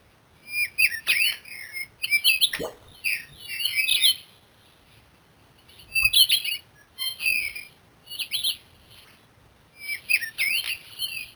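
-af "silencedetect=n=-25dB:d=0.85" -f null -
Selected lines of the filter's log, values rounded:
silence_start: 4.14
silence_end: 5.96 | silence_duration: 1.82
silence_start: 8.52
silence_end: 9.89 | silence_duration: 1.37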